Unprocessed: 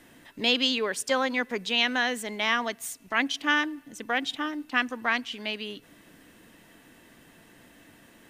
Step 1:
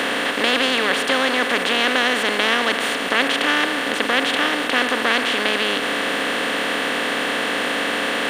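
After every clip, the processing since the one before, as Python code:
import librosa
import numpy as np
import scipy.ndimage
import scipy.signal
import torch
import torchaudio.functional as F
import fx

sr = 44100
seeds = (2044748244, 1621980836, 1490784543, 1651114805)

y = fx.bin_compress(x, sr, power=0.2)
y = fx.high_shelf(y, sr, hz=4000.0, db=-6.0)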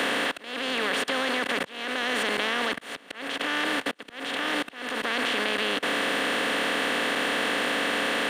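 y = fx.level_steps(x, sr, step_db=23)
y = fx.auto_swell(y, sr, attack_ms=484.0)
y = fx.band_squash(y, sr, depth_pct=40)
y = y * librosa.db_to_amplitude(-3.5)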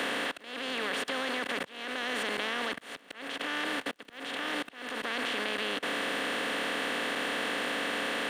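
y = fx.dmg_crackle(x, sr, seeds[0], per_s=60.0, level_db=-44.0)
y = y * librosa.db_to_amplitude(-6.0)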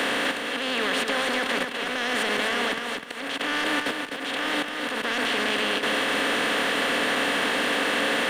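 y = 10.0 ** (-24.5 / 20.0) * np.tanh(x / 10.0 ** (-24.5 / 20.0))
y = fx.echo_feedback(y, sr, ms=253, feedback_pct=25, wet_db=-5.5)
y = y * librosa.db_to_amplitude(8.0)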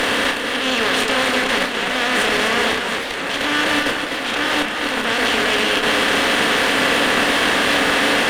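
y = fx.doubler(x, sr, ms=31.0, db=-5.5)
y = fx.cheby_harmonics(y, sr, harmonics=(4,), levels_db=(-16,), full_scale_db=-11.5)
y = fx.echo_warbled(y, sr, ms=402, feedback_pct=77, rate_hz=2.8, cents=210, wet_db=-11.5)
y = y * librosa.db_to_amplitude(5.5)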